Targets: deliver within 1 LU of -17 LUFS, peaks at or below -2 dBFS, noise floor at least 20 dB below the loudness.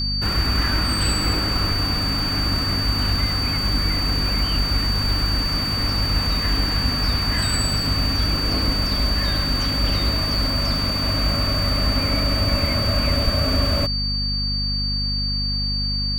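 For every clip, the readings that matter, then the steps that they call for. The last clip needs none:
hum 50 Hz; highest harmonic 250 Hz; hum level -24 dBFS; steady tone 4.6 kHz; tone level -23 dBFS; loudness -20.5 LUFS; peak level -6.5 dBFS; loudness target -17.0 LUFS
-> hum notches 50/100/150/200/250 Hz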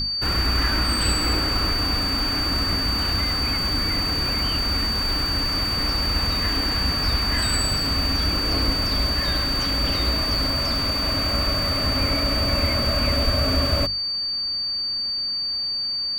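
hum not found; steady tone 4.6 kHz; tone level -23 dBFS
-> band-stop 4.6 kHz, Q 30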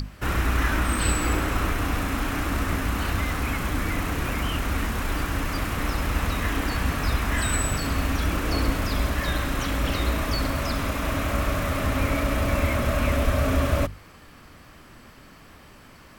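steady tone not found; loudness -25.5 LUFS; peak level -9.5 dBFS; loudness target -17.0 LUFS
-> trim +8.5 dB; peak limiter -2 dBFS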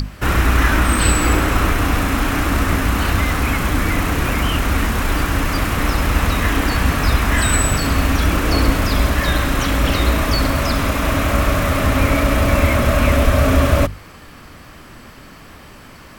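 loudness -17.0 LUFS; peak level -2.0 dBFS; noise floor -40 dBFS

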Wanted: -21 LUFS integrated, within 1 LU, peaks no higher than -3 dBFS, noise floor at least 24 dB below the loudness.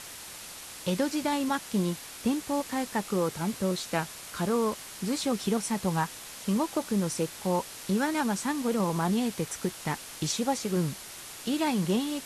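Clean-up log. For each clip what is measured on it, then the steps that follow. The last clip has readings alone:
noise floor -44 dBFS; noise floor target -54 dBFS; loudness -30.0 LUFS; peak level -13.0 dBFS; loudness target -21.0 LUFS
-> noise reduction 10 dB, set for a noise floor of -44 dBFS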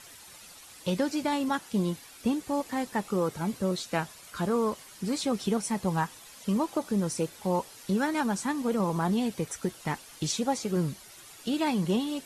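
noise floor -50 dBFS; noise floor target -54 dBFS
-> noise reduction 6 dB, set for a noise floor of -50 dBFS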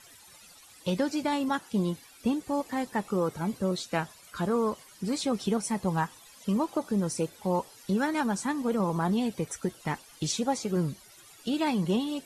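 noise floor -54 dBFS; loudness -30.0 LUFS; peak level -13.0 dBFS; loudness target -21.0 LUFS
-> trim +9 dB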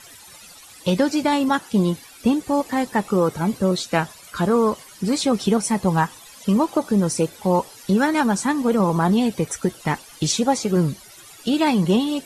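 loudness -21.0 LUFS; peak level -4.0 dBFS; noise floor -45 dBFS

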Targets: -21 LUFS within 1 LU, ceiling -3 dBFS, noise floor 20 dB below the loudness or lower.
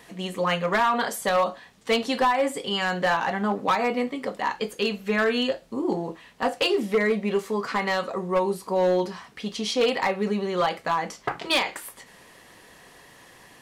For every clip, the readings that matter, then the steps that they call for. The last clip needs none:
clipped samples 1.0%; clipping level -16.0 dBFS; loudness -25.0 LUFS; peak level -16.0 dBFS; loudness target -21.0 LUFS
-> clip repair -16 dBFS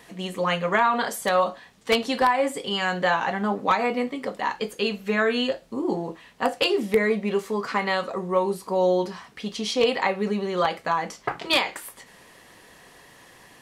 clipped samples 0.0%; loudness -24.5 LUFS; peak level -7.0 dBFS; loudness target -21.0 LUFS
-> trim +3.5 dB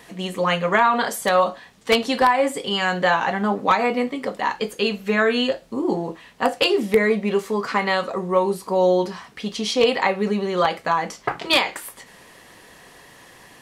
loudness -21.0 LUFS; peak level -3.5 dBFS; noise floor -48 dBFS

